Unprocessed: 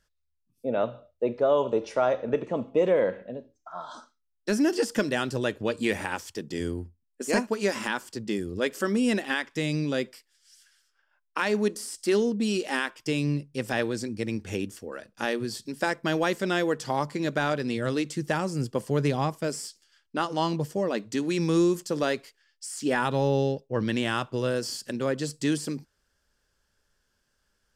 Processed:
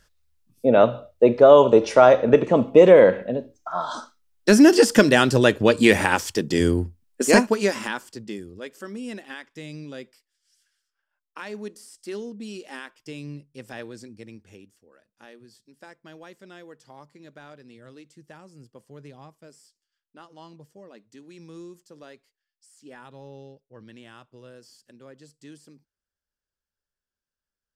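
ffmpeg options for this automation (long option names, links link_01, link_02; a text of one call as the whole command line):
ffmpeg -i in.wav -af "volume=11dB,afade=type=out:start_time=7.22:duration=0.54:silence=0.334965,afade=type=out:start_time=7.76:duration=0.83:silence=0.266073,afade=type=out:start_time=14.04:duration=0.63:silence=0.334965" out.wav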